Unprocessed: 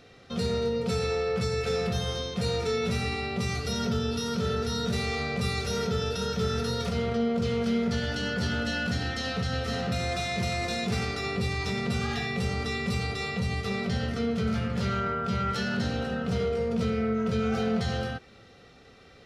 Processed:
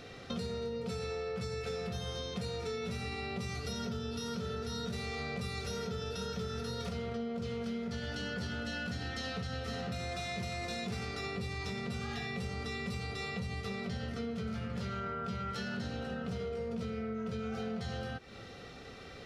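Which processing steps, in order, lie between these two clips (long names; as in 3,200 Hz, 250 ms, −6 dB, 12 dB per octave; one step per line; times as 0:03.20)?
downward compressor, threshold −41 dBFS, peak gain reduction 16.5 dB
level +4.5 dB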